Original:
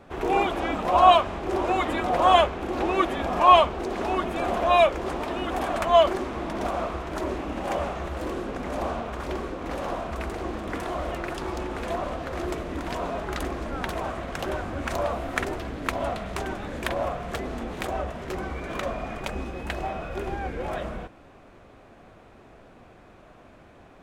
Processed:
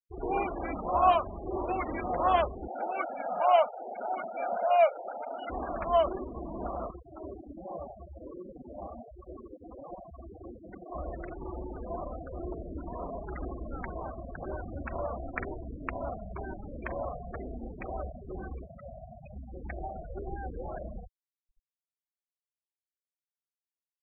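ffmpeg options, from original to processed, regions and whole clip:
ffmpeg -i in.wav -filter_complex "[0:a]asettb=1/sr,asplit=3[link_01][link_02][link_03];[link_01]atrim=end=2.684[link_04];[link_02]atrim=start=2.68:end=5.5,asetpts=PTS-STARTPTS,afade=type=in:duration=0.004:curve=qsin,afade=type=out:start_time=2.816:duration=0.004:curve=qsin,highpass=300,lowpass=3400,aecho=1:1:1.4:0.69,atrim=end_sample=124362[link_05];[link_03]atrim=start=5.496[link_06];[link_04][link_05]acrossfade=duration=0.004:curve1=hsin:curve2=qsin[link_07];[link_07][link_06]acrossfade=duration=0.004:curve1=qsin:curve2=hsin,asettb=1/sr,asplit=3[link_08][link_09][link_10];[link_08]atrim=end=6.914[link_11];[link_09]atrim=start=6.91:end=10.92,asetpts=PTS-STARTPTS,afade=type=in:duration=0.004:curve=qsin,afade=type=out:start_time=4.006:duration=0.004:curve=qsin,highpass=48,flanger=delay=5.3:depth=4.8:regen=40:speed=1.3:shape=sinusoidal,acrusher=bits=7:mix=0:aa=0.5[link_12];[link_10]atrim=start=10.916[link_13];[link_11][link_12]acrossfade=duration=0.004:curve1=hsin:curve2=qsin[link_14];[link_14][link_13]acrossfade=duration=0.004:curve1=qsin:curve2=hsin,asettb=1/sr,asplit=3[link_15][link_16][link_17];[link_15]atrim=end=18.644[link_18];[link_16]atrim=start=18.64:end=19.52,asetpts=PTS-STARTPTS,afade=type=in:duration=0.004:curve=qsin,afade=type=out:start_time=0.876:duration=0.004:curve=qsin,highpass=93,aecho=1:1:1.5:0.55,atrim=end_sample=38808,acrossover=split=190|3000[link_19][link_20][link_21];[link_20]acompressor=threshold=-36dB:ratio=4:attack=3.2:release=140:knee=2.83:detection=peak[link_22];[link_19][link_22][link_21]amix=inputs=3:normalize=0[link_23];[link_17]atrim=start=19.516[link_24];[link_18][link_23]acrossfade=duration=0.004:curve1=hsin:curve2=qsin[link_25];[link_25][link_24]acrossfade=duration=0.004:curve1=qsin:curve2=hsin,lowpass=frequency=2700:width=0.5412,lowpass=frequency=2700:width=1.3066,lowshelf=frequency=66:gain=6,afftfilt=real='re*gte(hypot(re,im),0.0631)':imag='im*gte(hypot(re,im),0.0631)':win_size=1024:overlap=0.75,volume=-7.5dB" out.wav

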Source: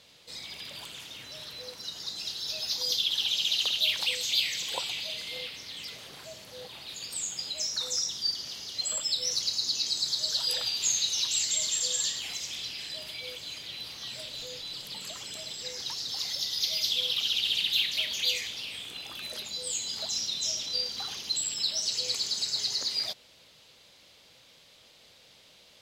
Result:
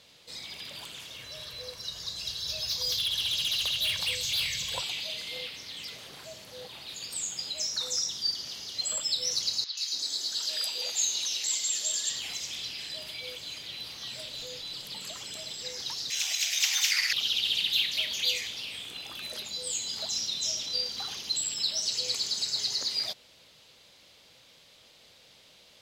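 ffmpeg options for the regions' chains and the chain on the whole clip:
ffmpeg -i in.wav -filter_complex "[0:a]asettb=1/sr,asplit=3[link_01][link_02][link_03];[link_01]atrim=end=1.034[link_04];[link_02]atrim=start=1.03:end=4.82,asetpts=PTS-STARTPTS,afade=type=in:duration=0.004:curve=qsin,afade=type=out:start_time=3.786:duration=0.004:curve=qsin,asubboost=boost=8.5:cutoff=130,aecho=1:1:1.8:0.33,atrim=end_sample=167139,volume=25dB,asoftclip=hard,volume=-25dB[link_05];[link_03]atrim=start=4.816[link_06];[link_04][link_05]acrossfade=duration=0.004:curve1=hsin:curve2=qsin[link_07];[link_07][link_06]acrossfade=duration=0.004:curve1=qsin:curve2=hsin,asettb=1/sr,asplit=3[link_08][link_09][link_10];[link_08]atrim=end=9.644[link_11];[link_09]atrim=start=9.64:end=12.1,asetpts=PTS-STARTPTS,afade=type=in:duration=0.004:curve=qsin,afade=type=out:start_time=2.456:duration=0.004:curve=qsin,highpass=280,acrossover=split=1100|4100[link_12][link_13][link_14];[link_14]adelay=130[link_15];[link_12]adelay=280[link_16];[link_16][link_13][link_15]amix=inputs=3:normalize=0,atrim=end_sample=108486[link_17];[link_10]atrim=start=12.096[link_18];[link_11][link_17]acrossfade=duration=0.004:curve1=hsin:curve2=qsin[link_19];[link_19][link_18]acrossfade=duration=0.004:curve1=qsin:curve2=hsin,asettb=1/sr,asplit=3[link_20][link_21][link_22];[link_20]atrim=end=16.104[link_23];[link_21]atrim=start=16.1:end=17.13,asetpts=PTS-STARTPTS,afade=type=in:duration=0.004:curve=qsin,afade=type=out:start_time=1.026:duration=0.004:curve=qsin,highpass=1400,highshelf=frequency=3200:gain=9,aeval=exprs='val(0)*sin(2*PI*1300*n/s)':channel_layout=same[link_24];[link_22]atrim=start=17.126[link_25];[link_23][link_24]acrossfade=duration=0.004:curve1=hsin:curve2=qsin[link_26];[link_26][link_25]acrossfade=duration=0.004:curve1=qsin:curve2=hsin" out.wav

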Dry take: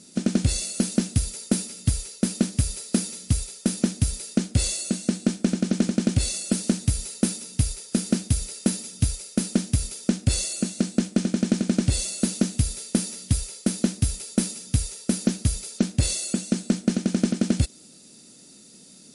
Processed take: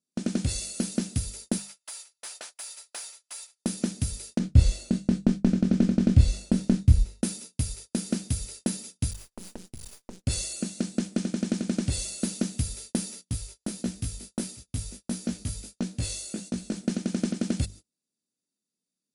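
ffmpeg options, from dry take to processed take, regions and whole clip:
ffmpeg -i in.wav -filter_complex "[0:a]asettb=1/sr,asplit=3[link_01][link_02][link_03];[link_01]atrim=end=1.584[link_04];[link_02]atrim=start=1.58:end=3.6,asetpts=PTS-STARTPTS,afade=type=in:duration=0.004:curve=qsin,afade=type=out:start_time=2.016:duration=0.004:curve=qsin,highshelf=frequency=5900:gain=11,asplit=2[link_05][link_06];[link_06]highpass=frequency=720:poles=1,volume=12dB,asoftclip=type=tanh:threshold=-5.5dB[link_07];[link_05][link_07]amix=inputs=2:normalize=0,lowpass=frequency=1100:poles=1,volume=-6dB,highpass=frequency=700:width=0.5412,highpass=frequency=700:width=1.3066[link_08];[link_03]atrim=start=3.596[link_09];[link_04][link_08]acrossfade=duration=0.004:curve1=hsin:curve2=qsin[link_10];[link_10][link_09]acrossfade=duration=0.004:curve1=qsin:curve2=hsin,asettb=1/sr,asplit=3[link_11][link_12][link_13];[link_11]atrim=end=4.394[link_14];[link_12]atrim=start=4.39:end=7.23,asetpts=PTS-STARTPTS,afade=type=in:duration=0.004:curve=qsin,afade=type=out:start_time=2.836:duration=0.004:curve=qsin,agate=range=-33dB:threshold=-31dB:ratio=3:release=100:detection=peak,aemphasis=mode=reproduction:type=bsi,asplit=2[link_15][link_16];[link_16]adelay=26,volume=-7.5dB[link_17];[link_15][link_17]amix=inputs=2:normalize=0,atrim=end_sample=125244[link_18];[link_13]atrim=start=7.226[link_19];[link_14][link_18]acrossfade=duration=0.004:curve1=hsin:curve2=qsin[link_20];[link_20][link_19]acrossfade=duration=0.004:curve1=qsin:curve2=hsin,asettb=1/sr,asplit=3[link_21][link_22][link_23];[link_21]atrim=end=9.114[link_24];[link_22]atrim=start=9.11:end=10.26,asetpts=PTS-STARTPTS,afade=type=in:duration=0.004:curve=qsin,afade=type=out:start_time=1.146:duration=0.004:curve=qsin,acompressor=threshold=-27dB:ratio=6:attack=3.2:release=140:knee=1:detection=peak,aeval=exprs='max(val(0),0)':channel_layout=same[link_25];[link_23]atrim=start=10.256[link_26];[link_24][link_25]acrossfade=duration=0.004:curve1=hsin:curve2=qsin[link_27];[link_27][link_26]acrossfade=duration=0.004:curve1=qsin:curve2=hsin,asettb=1/sr,asplit=3[link_28][link_29][link_30];[link_28]atrim=end=13.214[link_31];[link_29]atrim=start=13.21:end=16.76,asetpts=PTS-STARTPTS,afade=type=in:duration=0.004:curve=qsin,afade=type=out:start_time=3.546:duration=0.004:curve=qsin,aecho=1:1:545:0.126,atrim=end_sample=156555,flanger=delay=16.5:depth=4.2:speed=1.5[link_32];[link_30]atrim=start=16.756[link_33];[link_31][link_32]acrossfade=duration=0.004:curve1=hsin:curve2=qsin[link_34];[link_34][link_33]acrossfade=duration=0.004:curve1=qsin:curve2=hsin,bandreject=frequency=50:width_type=h:width=6,bandreject=frequency=100:width_type=h:width=6,bandreject=frequency=150:width_type=h:width=6,bandreject=frequency=200:width_type=h:width=6,agate=range=-34dB:threshold=-37dB:ratio=16:detection=peak,volume=-5dB" out.wav

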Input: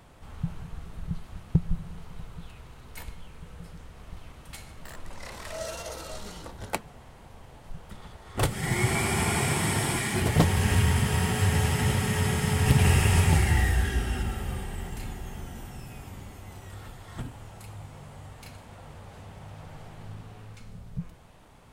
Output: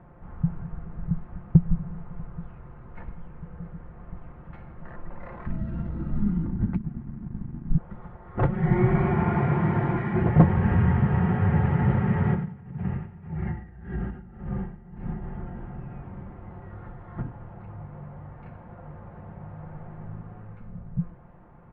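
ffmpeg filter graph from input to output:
ffmpeg -i in.wav -filter_complex "[0:a]asettb=1/sr,asplit=3[link_01][link_02][link_03];[link_01]atrim=end=5.464[link_04];[link_02]atrim=start=5.46:end=7.78,asetpts=PTS-STARTPTS,afade=type=in:duration=0.004:curve=qsin,afade=type=out:start_time=2.316:duration=0.004:curve=qsin,acrossover=split=150|3000[link_05][link_06][link_07];[link_06]acompressor=threshold=-40dB:ratio=6:attack=3.2:release=140:knee=2.83:detection=peak[link_08];[link_05][link_08][link_07]amix=inputs=3:normalize=0,aeval=exprs='sgn(val(0))*max(abs(val(0))-0.00251,0)':channel_layout=same,lowshelf=frequency=360:width_type=q:width=3:gain=13.5[link_09];[link_03]atrim=start=7.776[link_10];[link_04][link_09]acrossfade=duration=0.004:curve1=hsin:curve2=qsin[link_11];[link_11][link_10]acrossfade=duration=0.004:curve1=qsin:curve2=hsin,asettb=1/sr,asplit=3[link_12][link_13][link_14];[link_12]atrim=end=8.494[link_15];[link_13]atrim=start=8.49:end=9.13,asetpts=PTS-STARTPTS,afade=type=in:duration=0.004:curve=qsin,afade=type=out:start_time=0.636:duration=0.004:curve=qsin,asubboost=boost=11.5:cutoff=120,aecho=1:1:5.4:0.63,atrim=end_sample=28224[link_16];[link_14]atrim=start=9.126[link_17];[link_15][link_16]acrossfade=duration=0.004:curve1=hsin:curve2=qsin[link_18];[link_18][link_17]acrossfade=duration=0.004:curve1=qsin:curve2=hsin,asettb=1/sr,asplit=3[link_19][link_20][link_21];[link_19]atrim=end=12.344[link_22];[link_20]atrim=start=12.34:end=15.22,asetpts=PTS-STARTPTS,afade=type=in:duration=0.004:curve=qsin,afade=type=out:start_time=2.876:duration=0.004:curve=qsin,equalizer=frequency=180:width_type=o:width=0.79:gain=7,acompressor=threshold=-27dB:ratio=8:attack=3.2:release=140:knee=1:detection=peak,aeval=exprs='val(0)*pow(10,-18*(0.5-0.5*cos(2*PI*1.8*n/s))/20)':channel_layout=same[link_23];[link_21]atrim=start=15.216[link_24];[link_22][link_23]acrossfade=duration=0.004:curve1=hsin:curve2=qsin[link_25];[link_25][link_24]acrossfade=duration=0.004:curve1=qsin:curve2=hsin,lowpass=frequency=1700:width=0.5412,lowpass=frequency=1700:width=1.3066,equalizer=frequency=130:width_type=o:width=2.7:gain=5,aecho=1:1:5.7:0.43" out.wav

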